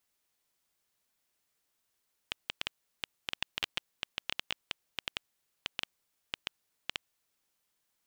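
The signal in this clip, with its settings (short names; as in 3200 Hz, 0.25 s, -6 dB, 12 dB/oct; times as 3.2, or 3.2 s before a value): random clicks 7/s -14 dBFS 4.67 s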